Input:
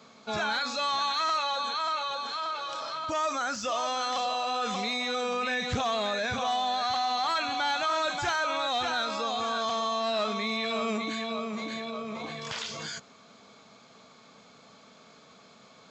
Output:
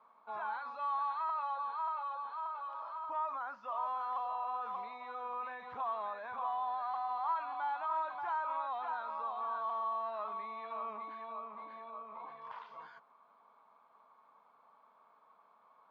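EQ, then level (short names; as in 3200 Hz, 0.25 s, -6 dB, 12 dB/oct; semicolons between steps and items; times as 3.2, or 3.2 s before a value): band-pass 990 Hz, Q 6; air absorption 240 m; +2.0 dB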